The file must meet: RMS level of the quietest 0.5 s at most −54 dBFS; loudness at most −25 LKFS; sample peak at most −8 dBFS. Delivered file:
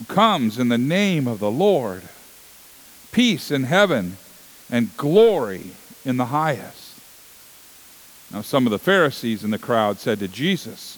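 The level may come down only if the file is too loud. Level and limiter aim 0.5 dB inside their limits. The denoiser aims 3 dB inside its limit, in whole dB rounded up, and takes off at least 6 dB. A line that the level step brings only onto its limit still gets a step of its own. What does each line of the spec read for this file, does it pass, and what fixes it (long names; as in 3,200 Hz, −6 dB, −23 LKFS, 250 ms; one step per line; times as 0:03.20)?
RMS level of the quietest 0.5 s −46 dBFS: out of spec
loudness −20.0 LKFS: out of spec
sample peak −3.5 dBFS: out of spec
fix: broadband denoise 6 dB, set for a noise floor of −46 dBFS
level −5.5 dB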